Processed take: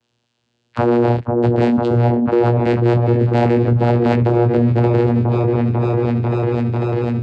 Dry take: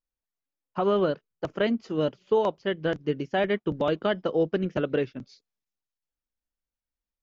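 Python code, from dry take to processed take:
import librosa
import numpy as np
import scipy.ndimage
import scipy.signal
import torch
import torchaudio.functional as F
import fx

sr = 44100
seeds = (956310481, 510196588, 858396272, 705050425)

p1 = fx.freq_compress(x, sr, knee_hz=1600.0, ratio=1.5)
p2 = fx.rider(p1, sr, range_db=10, speed_s=0.5)
p3 = fx.leveller(p2, sr, passes=3)
p4 = fx.lowpass_res(p3, sr, hz=4400.0, q=3.3)
p5 = fx.doubler(p4, sr, ms=20.0, db=-7.0)
p6 = fx.vocoder(p5, sr, bands=8, carrier='saw', carrier_hz=119.0)
p7 = p6 + fx.echo_opening(p6, sr, ms=495, hz=750, octaves=1, feedback_pct=70, wet_db=-6, dry=0)
y = fx.env_flatten(p7, sr, amount_pct=70)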